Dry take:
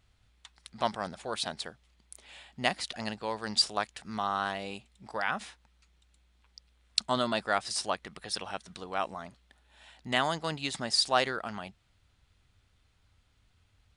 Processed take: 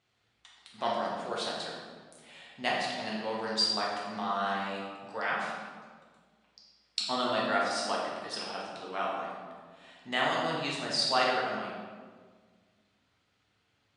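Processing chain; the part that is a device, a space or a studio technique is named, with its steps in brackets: supermarket ceiling speaker (BPF 200–6900 Hz; reverb RT60 1.7 s, pre-delay 4 ms, DRR -5 dB); gain -5 dB

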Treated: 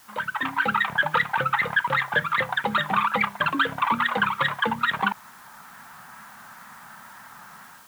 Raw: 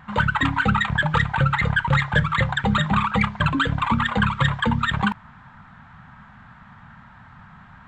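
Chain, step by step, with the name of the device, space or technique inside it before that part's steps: dictaphone (BPF 360–3700 Hz; AGC gain up to 11.5 dB; wow and flutter; white noise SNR 27 dB); gain -8 dB

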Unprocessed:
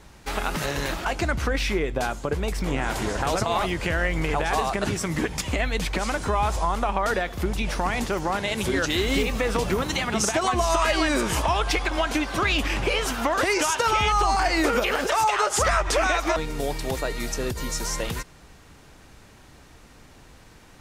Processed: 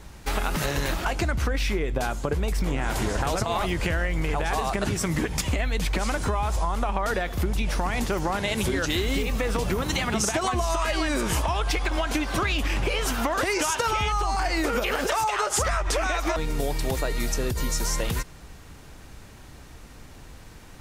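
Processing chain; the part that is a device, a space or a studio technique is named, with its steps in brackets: ASMR close-microphone chain (low shelf 130 Hz +6 dB; compressor, threshold -23 dBFS, peak gain reduction 8 dB; high shelf 12000 Hz +7 dB); gain +1.5 dB

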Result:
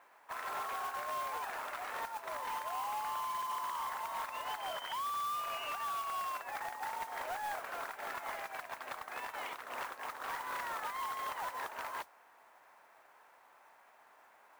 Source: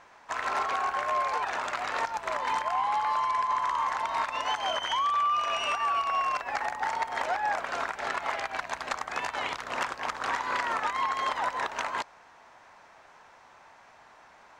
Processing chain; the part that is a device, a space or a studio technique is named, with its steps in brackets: carbon microphone (BPF 330–2900 Hz; soft clip -26 dBFS, distortion -15 dB; modulation noise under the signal 14 dB); gain -7.5 dB

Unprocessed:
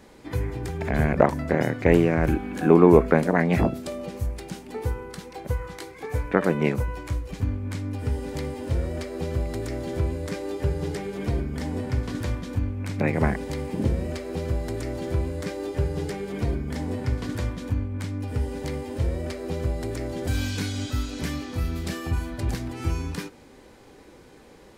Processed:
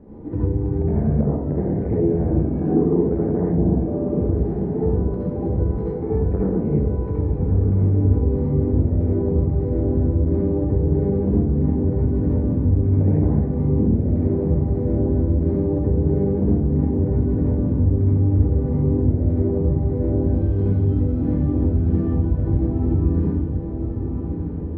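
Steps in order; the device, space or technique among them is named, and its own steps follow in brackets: 3.46–4.06 steep low-pass 1100 Hz 48 dB/oct; television next door (compressor 5:1, threshold -30 dBFS, peak gain reduction 18.5 dB; LPF 410 Hz 12 dB/oct; reverb RT60 0.65 s, pre-delay 62 ms, DRR -5.5 dB); diffused feedback echo 1.198 s, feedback 54%, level -6 dB; gain +7 dB

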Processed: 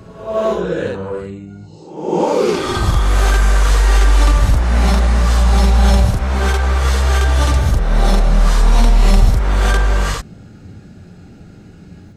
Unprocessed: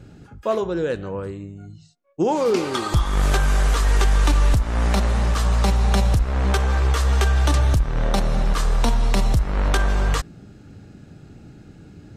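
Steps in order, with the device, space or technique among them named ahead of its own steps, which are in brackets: reverse reverb (reverse; reverb RT60 0.80 s, pre-delay 36 ms, DRR -5.5 dB; reverse); gain -1 dB

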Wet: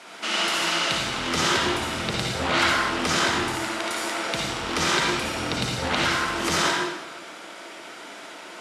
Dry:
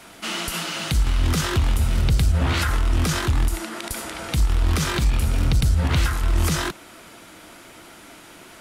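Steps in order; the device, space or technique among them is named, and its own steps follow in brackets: supermarket ceiling speaker (BPF 330–6900 Hz; reverb RT60 1.1 s, pre-delay 52 ms, DRR -3 dB); gain +1 dB

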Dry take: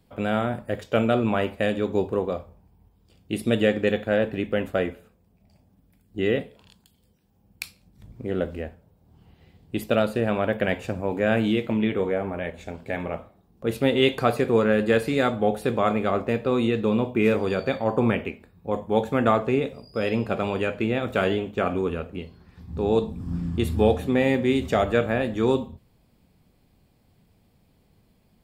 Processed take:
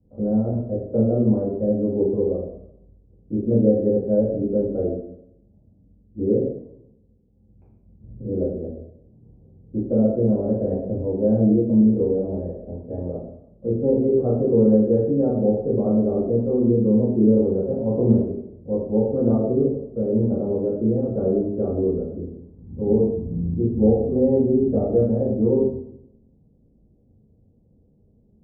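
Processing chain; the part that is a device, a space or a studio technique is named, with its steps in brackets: next room (LPF 520 Hz 24 dB/oct; reverb RT60 0.75 s, pre-delay 3 ms, DRR -8.5 dB); gain -5 dB

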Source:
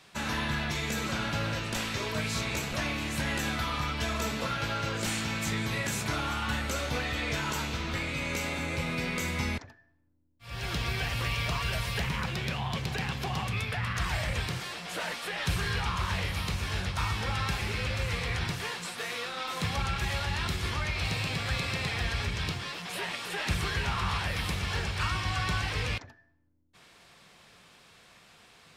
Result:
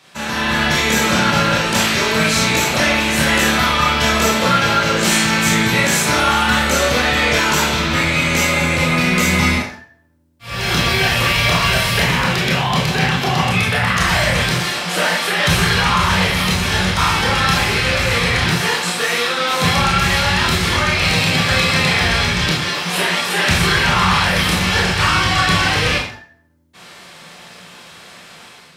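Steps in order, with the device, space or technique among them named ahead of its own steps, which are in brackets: 12.88–13.54 high shelf 8600 Hz -5.5 dB; far laptop microphone (reverb RT60 0.40 s, pre-delay 22 ms, DRR -2 dB; HPF 120 Hz 6 dB/oct; AGC gain up to 8 dB); gain +5.5 dB

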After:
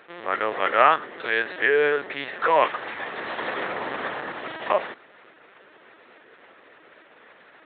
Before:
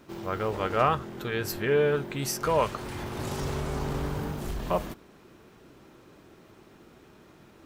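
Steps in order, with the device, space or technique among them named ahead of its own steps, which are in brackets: talking toy (LPC vocoder at 8 kHz pitch kept; HPF 510 Hz 12 dB/oct; bell 1800 Hz +9.5 dB 0.47 oct); gain +7 dB

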